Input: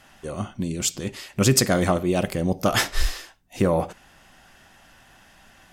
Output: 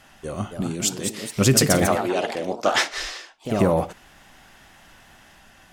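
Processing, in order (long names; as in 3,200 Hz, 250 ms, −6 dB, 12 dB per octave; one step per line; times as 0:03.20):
0:00.62–0:01.36: high-pass filter 150 Hz 12 dB per octave
0:01.86–0:03.59: three-way crossover with the lows and the highs turned down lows −23 dB, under 290 Hz, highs −22 dB, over 7,500 Hz
delay with pitch and tempo change per echo 301 ms, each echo +2 semitones, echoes 2, each echo −6 dB
level +1 dB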